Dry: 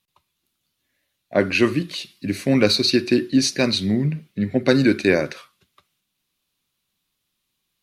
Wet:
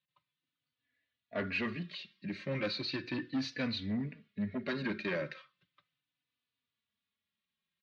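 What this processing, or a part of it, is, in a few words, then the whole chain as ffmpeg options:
barber-pole flanger into a guitar amplifier: -filter_complex "[0:a]asplit=2[a][b];[b]adelay=3.4,afreqshift=-0.36[c];[a][c]amix=inputs=2:normalize=1,asoftclip=type=tanh:threshold=-19dB,highpass=92,equalizer=f=360:t=q:w=4:g=-8,equalizer=f=800:t=q:w=4:g=-7,equalizer=f=1.8k:t=q:w=4:g=5,lowpass=f=4k:w=0.5412,lowpass=f=4k:w=1.3066,volume=-8.5dB"

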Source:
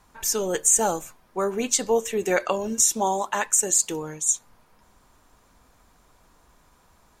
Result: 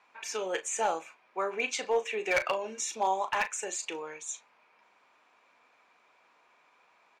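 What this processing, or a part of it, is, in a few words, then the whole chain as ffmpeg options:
megaphone: -filter_complex "[0:a]highpass=510,lowpass=3.6k,equalizer=f=2.4k:t=o:w=0.34:g=12,asoftclip=type=hard:threshold=-17dB,asplit=2[a][b];[b]adelay=37,volume=-11dB[c];[a][c]amix=inputs=2:normalize=0,volume=-3.5dB"

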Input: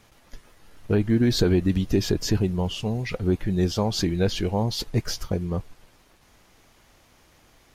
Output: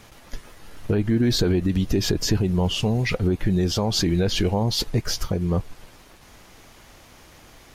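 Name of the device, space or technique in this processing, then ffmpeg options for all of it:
stacked limiters: -af "alimiter=limit=-15.5dB:level=0:latency=1:release=64,alimiter=limit=-21dB:level=0:latency=1:release=248,volume=8.5dB"

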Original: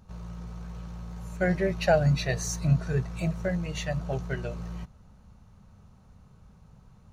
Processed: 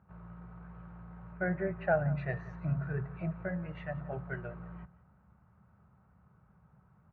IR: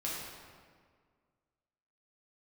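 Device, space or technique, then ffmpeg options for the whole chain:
bass cabinet: -filter_complex "[0:a]highpass=f=70:w=0.5412,highpass=f=70:w=1.3066,equalizer=f=93:t=q:w=4:g=-8,equalizer=f=240:t=q:w=4:g=-7,equalizer=f=480:t=q:w=4:g=-5,equalizer=f=1.4k:t=q:w=4:g=5,lowpass=f=2k:w=0.5412,lowpass=f=2k:w=1.3066,bandreject=f=139.7:t=h:w=4,bandreject=f=279.4:t=h:w=4,bandreject=f=419.1:t=h:w=4,bandreject=f=558.8:t=h:w=4,bandreject=f=698.5:t=h:w=4,bandreject=f=838.2:t=h:w=4,bandreject=f=977.9:t=h:w=4,bandreject=f=1.1176k:t=h:w=4,bandreject=f=1.2573k:t=h:w=4,bandreject=f=1.397k:t=h:w=4,bandreject=f=1.5367k:t=h:w=4,bandreject=f=1.6764k:t=h:w=4,bandreject=f=1.8161k:t=h:w=4,asettb=1/sr,asplit=3[a][b][c];[a]atrim=end=1.324[d];[b]atrim=start=1.32:end=2.18,asetpts=PTS-STARTPTS,afade=t=in:d=0.004:c=qsin,afade=t=out:st=0.856:d=0.004:c=qsin,equalizer=f=6.2k:t=o:w=1.1:g=-14.5[e];[c]atrim=start=2.176[f];[d][e]acrossfade=d=0.004:c1=hsin:c2=qsin[g];[g][f]acrossfade=d=0.004:c1=qsin:c2=hsin,aecho=1:1:177:0.112,volume=-5.5dB"

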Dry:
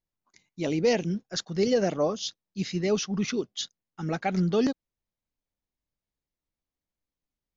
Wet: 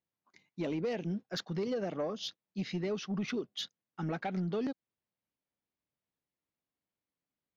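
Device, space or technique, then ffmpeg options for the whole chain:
AM radio: -af "highpass=120,lowpass=3.5k,acompressor=threshold=-30dB:ratio=6,asoftclip=type=tanh:threshold=-26dB"

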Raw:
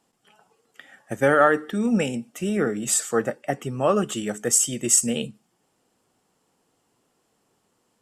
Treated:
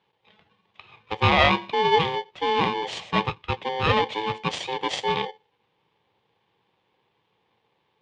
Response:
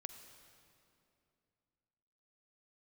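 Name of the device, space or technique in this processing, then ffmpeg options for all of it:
ring modulator pedal into a guitar cabinet: -af "aeval=exprs='val(0)*sgn(sin(2*PI*650*n/s))':c=same,highpass=94,equalizer=f=110:t=q:w=4:g=6,equalizer=f=260:t=q:w=4:g=-7,equalizer=f=490:t=q:w=4:g=4,equalizer=f=820:t=q:w=4:g=4,equalizer=f=1.4k:t=q:w=4:g=-10,equalizer=f=3.2k:t=q:w=4:g=6,lowpass=f=3.7k:w=0.5412,lowpass=f=3.7k:w=1.3066"

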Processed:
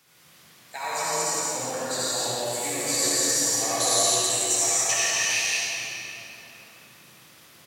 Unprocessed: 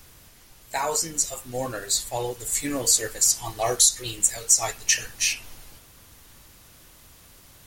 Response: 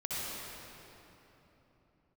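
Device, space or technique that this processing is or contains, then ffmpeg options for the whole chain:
stadium PA: -filter_complex "[0:a]highpass=f=130:w=0.5412,highpass=f=130:w=1.3066,equalizer=f=2.4k:t=o:w=2.8:g=6,aecho=1:1:169.1|209.9:0.794|0.316[a];[1:a]atrim=start_sample=2205[b];[a][b]afir=irnorm=-1:irlink=0,volume=-8.5dB"

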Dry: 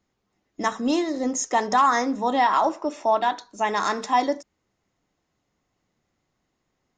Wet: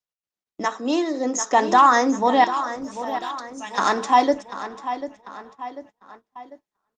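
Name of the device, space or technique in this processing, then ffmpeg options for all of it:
video call: -filter_complex "[0:a]asettb=1/sr,asplit=3[a][b][c];[a]atrim=end=0.654[d];[b]atrim=start=0.65:end=1.53,asetpts=PTS-STARTPTS,afade=t=in:d=0.004:c=qsin,afade=t=out:st=0.876:d=0.004:c=qsin,highpass=f=260:w=0.5412,highpass=f=260:w=1.3066[e];[c]atrim=start=1.526[f];[d][e]acrossfade=d=0.004:c1=hsin:c2=qsin[g];[g][f]acrossfade=d=0.004:c1=qsin:c2=hsin,bandreject=f=2.1k:w=19,asettb=1/sr,asplit=3[h][i][j];[h]atrim=end=2.444[k];[i]atrim=start=2.44:end=3.78,asetpts=PTS-STARTPTS,afade=t=in:d=0.004:c=qsin,afade=t=out:st=1.336:d=0.004:c=qsin,aderivative[l];[j]atrim=start=3.776[m];[k][l]acrossfade=d=0.004:c1=hsin:c2=qsin[n];[n][m]acrossfade=d=0.004:c1=qsin:c2=hsin,highpass=170,asplit=2[o][p];[p]adelay=743,lowpass=f=4.3k:p=1,volume=-11.5dB,asplit=2[q][r];[r]adelay=743,lowpass=f=4.3k:p=1,volume=0.49,asplit=2[s][t];[t]adelay=743,lowpass=f=4.3k:p=1,volume=0.49,asplit=2[u][v];[v]adelay=743,lowpass=f=4.3k:p=1,volume=0.49,asplit=2[w][x];[x]adelay=743,lowpass=f=4.3k:p=1,volume=0.49[y];[o][q][s][u][w][y]amix=inputs=6:normalize=0,dynaudnorm=f=200:g=11:m=5.5dB,agate=range=-26dB:threshold=-43dB:ratio=16:detection=peak" -ar 48000 -c:a libopus -b:a 24k

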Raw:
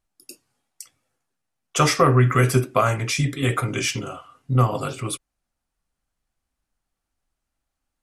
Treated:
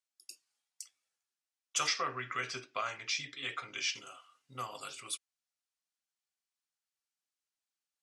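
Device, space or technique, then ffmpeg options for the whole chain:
piezo pickup straight into a mixer: -filter_complex "[0:a]asplit=3[a][b][c];[a]afade=t=out:st=1.86:d=0.02[d];[b]lowpass=f=5.4k:w=0.5412,lowpass=f=5.4k:w=1.3066,afade=t=in:st=1.86:d=0.02,afade=t=out:st=3.94:d=0.02[e];[c]afade=t=in:st=3.94:d=0.02[f];[d][e][f]amix=inputs=3:normalize=0,lowpass=5.7k,aderivative"

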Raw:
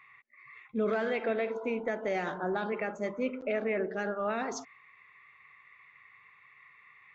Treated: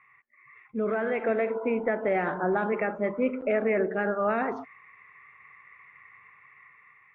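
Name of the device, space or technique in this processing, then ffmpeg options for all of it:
action camera in a waterproof case: -af "lowpass=f=2.3k:w=0.5412,lowpass=f=2.3k:w=1.3066,dynaudnorm=f=440:g=5:m=7dB,volume=-1dB" -ar 22050 -c:a aac -b:a 48k

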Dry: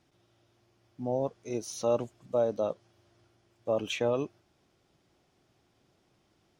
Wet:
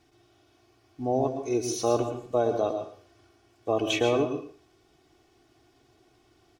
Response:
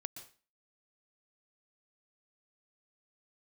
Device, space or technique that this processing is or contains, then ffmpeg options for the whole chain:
microphone above a desk: -filter_complex "[0:a]aecho=1:1:2.7:0.69[a];[1:a]atrim=start_sample=2205[b];[a][b]afir=irnorm=-1:irlink=0,asplit=2[c][d];[d]adelay=110.8,volume=-14dB,highshelf=f=4k:g=-2.49[e];[c][e]amix=inputs=2:normalize=0,volume=7.5dB"

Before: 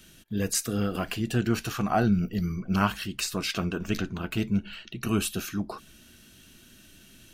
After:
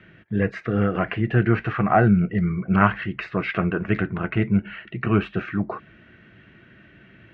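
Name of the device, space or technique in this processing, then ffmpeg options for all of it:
bass cabinet: -af "highpass=79,equalizer=f=80:t=q:w=4:g=-5,equalizer=f=110:t=q:w=4:g=3,equalizer=f=250:t=q:w=4:g=-8,equalizer=f=920:t=q:w=4:g=-3,equalizer=f=2k:t=q:w=4:g=8,lowpass=f=2.1k:w=0.5412,lowpass=f=2.1k:w=1.3066,volume=8dB"

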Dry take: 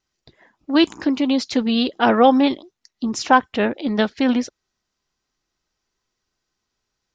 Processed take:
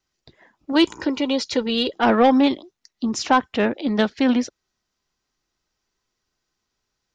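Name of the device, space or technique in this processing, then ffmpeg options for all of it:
one-band saturation: -filter_complex "[0:a]asettb=1/sr,asplit=3[a][b][c];[a]atrim=end=0.724[d];[b]atrim=start=0.72:end=1.94,asetpts=PTS-STARTPTS,afade=t=in:d=0.004:c=qsin,afade=t=out:st=1.216:d=0.004:c=qsin,aecho=1:1:2.1:0.5,atrim=end_sample=53802[e];[c]atrim=start=1.936[f];[d][e]acrossfade=d=0.004:c1=hsin:c2=qsin[g];[g][f]acrossfade=d=0.004:c1=qsin:c2=hsin,acrossover=split=320|4800[h][i][j];[i]asoftclip=type=tanh:threshold=-9.5dB[k];[h][k][j]amix=inputs=3:normalize=0"

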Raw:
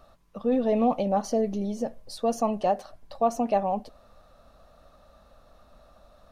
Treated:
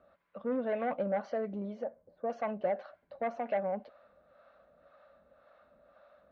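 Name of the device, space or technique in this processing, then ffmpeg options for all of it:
guitar amplifier with harmonic tremolo: -filter_complex "[0:a]acrossover=split=520[a][b];[a]aeval=exprs='val(0)*(1-0.7/2+0.7/2*cos(2*PI*1.9*n/s))':c=same[c];[b]aeval=exprs='val(0)*(1-0.7/2-0.7/2*cos(2*PI*1.9*n/s))':c=same[d];[c][d]amix=inputs=2:normalize=0,asoftclip=type=tanh:threshold=-22.5dB,highpass=110,equalizer=f=120:t=q:w=4:g=-9,equalizer=f=560:t=q:w=4:g=9,equalizer=f=1.5k:t=q:w=4:g=10,equalizer=f=2.1k:t=q:w=4:g=8,lowpass=f=3.7k:w=0.5412,lowpass=f=3.7k:w=1.3066,asettb=1/sr,asplit=3[e][f][g];[e]atrim=end=1.844[h];[f]atrim=start=1.84:end=2.3,asetpts=PTS-STARTPTS,afade=t=in:d=0.004:c=qsin,afade=t=out:st=0.456:d=0.004:c=qsin,lowpass=1k[i];[g]atrim=start=2.296[j];[h][i]acrossfade=d=0.004:c1=hsin:c2=qsin[k];[k][j]acrossfade=d=0.004:c1=qsin:c2=hsin,highshelf=f=5.2k:g=-5,volume=-6dB"

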